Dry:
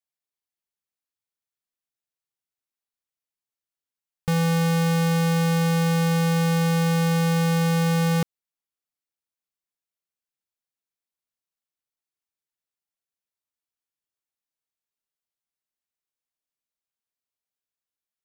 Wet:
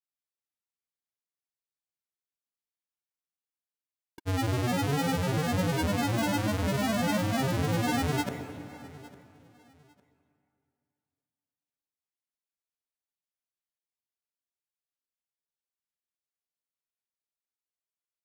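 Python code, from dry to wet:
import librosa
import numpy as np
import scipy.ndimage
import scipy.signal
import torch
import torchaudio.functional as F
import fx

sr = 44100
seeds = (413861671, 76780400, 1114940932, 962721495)

p1 = fx.granulator(x, sr, seeds[0], grain_ms=100.0, per_s=20.0, spray_ms=100.0, spread_st=12)
p2 = p1 + fx.echo_feedback(p1, sr, ms=855, feedback_pct=28, wet_db=-21, dry=0)
p3 = fx.rev_plate(p2, sr, seeds[1], rt60_s=2.6, hf_ratio=0.45, predelay_ms=110, drr_db=10.0)
p4 = fx.formant_shift(p3, sr, semitones=6)
y = F.gain(torch.from_numpy(p4), -6.0).numpy()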